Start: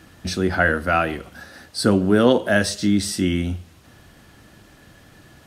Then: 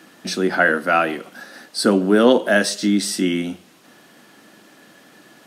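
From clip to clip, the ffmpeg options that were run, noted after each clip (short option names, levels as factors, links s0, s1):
-af "highpass=f=200:w=0.5412,highpass=f=200:w=1.3066,volume=1.33"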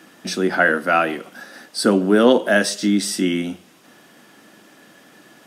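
-af "bandreject=f=4200:w=15"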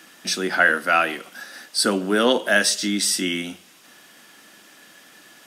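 -af "tiltshelf=f=1100:g=-6,volume=0.841"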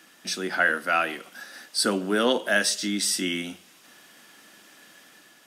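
-af "dynaudnorm=f=120:g=7:m=1.41,volume=0.501"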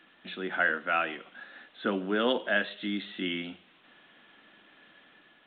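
-af "volume=0.596" -ar 8000 -c:a pcm_alaw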